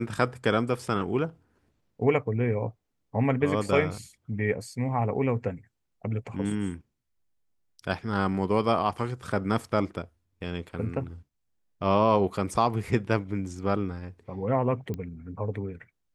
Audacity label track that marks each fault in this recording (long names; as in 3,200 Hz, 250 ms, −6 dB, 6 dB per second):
14.940000	14.940000	click −22 dBFS